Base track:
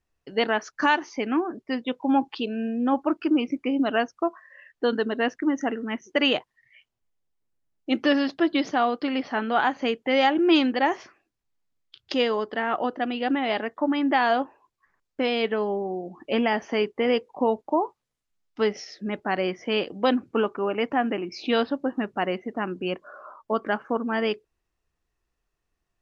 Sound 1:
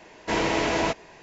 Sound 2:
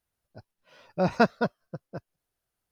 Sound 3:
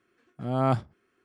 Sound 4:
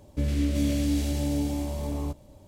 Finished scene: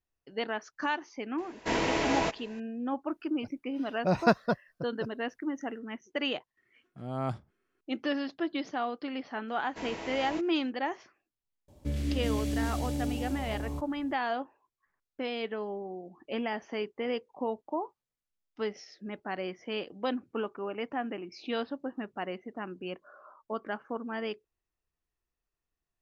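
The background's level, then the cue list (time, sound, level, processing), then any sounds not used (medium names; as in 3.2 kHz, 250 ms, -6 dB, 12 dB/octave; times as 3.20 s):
base track -10 dB
1.38 s: add 1 -4.5 dB
3.07 s: add 2 -2 dB
6.57 s: add 3 -9 dB
9.48 s: add 1 -16 dB
11.68 s: add 4 -5.5 dB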